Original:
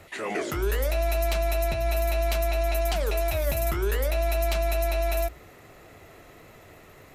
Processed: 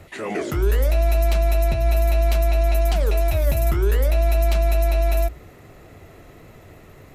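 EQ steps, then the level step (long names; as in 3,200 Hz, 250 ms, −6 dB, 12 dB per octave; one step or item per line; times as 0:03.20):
low-shelf EQ 370 Hz +9 dB
0.0 dB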